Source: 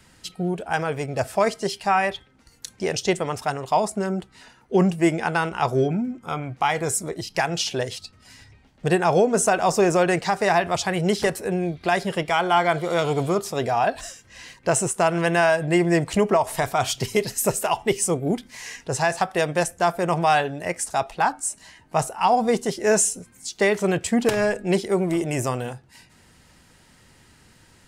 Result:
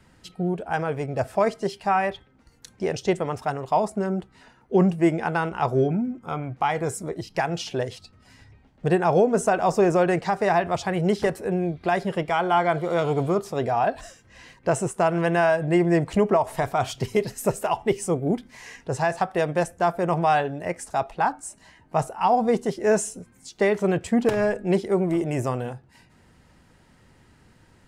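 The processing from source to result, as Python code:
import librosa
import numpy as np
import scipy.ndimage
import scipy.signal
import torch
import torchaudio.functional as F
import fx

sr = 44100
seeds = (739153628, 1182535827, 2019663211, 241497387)

y = fx.high_shelf(x, sr, hz=2300.0, db=-11.0)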